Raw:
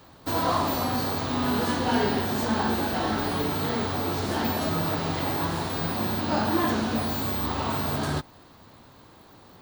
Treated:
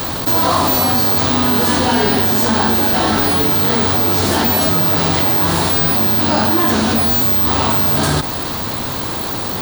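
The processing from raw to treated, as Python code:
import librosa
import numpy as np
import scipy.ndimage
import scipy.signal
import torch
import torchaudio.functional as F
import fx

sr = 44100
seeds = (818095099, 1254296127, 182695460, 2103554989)

y = fx.high_shelf(x, sr, hz=4600.0, db=9.0)
y = fx.env_flatten(y, sr, amount_pct=70)
y = y * librosa.db_to_amplitude(6.5)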